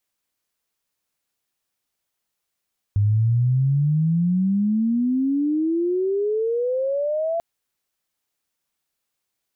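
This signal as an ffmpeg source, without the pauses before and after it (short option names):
-f lavfi -i "aevalsrc='pow(10,(-15-5.5*t/4.44)/20)*sin(2*PI*100*4.44/log(680/100)*(exp(log(680/100)*t/4.44)-1))':d=4.44:s=44100"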